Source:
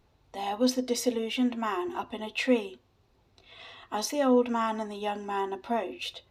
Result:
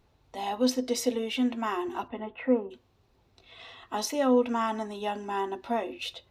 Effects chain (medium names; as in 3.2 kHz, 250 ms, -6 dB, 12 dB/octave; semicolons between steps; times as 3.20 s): 2.07–2.70 s: low-pass 2.7 kHz -> 1.2 kHz 24 dB/octave